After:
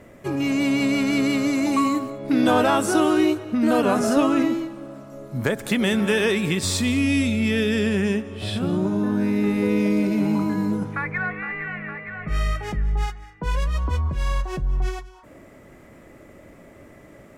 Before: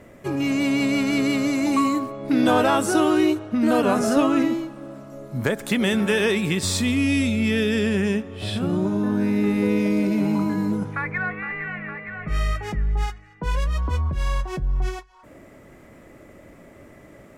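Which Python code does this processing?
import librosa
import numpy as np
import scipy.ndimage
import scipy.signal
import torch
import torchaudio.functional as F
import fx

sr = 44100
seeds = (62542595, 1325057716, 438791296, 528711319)

y = x + 10.0 ** (-18.5 / 20.0) * np.pad(x, (int(198 * sr / 1000.0), 0))[:len(x)]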